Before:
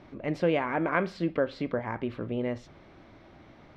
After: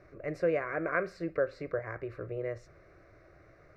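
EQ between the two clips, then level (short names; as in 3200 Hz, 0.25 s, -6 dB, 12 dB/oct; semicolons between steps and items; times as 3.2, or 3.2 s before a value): fixed phaser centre 880 Hz, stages 6; -1.5 dB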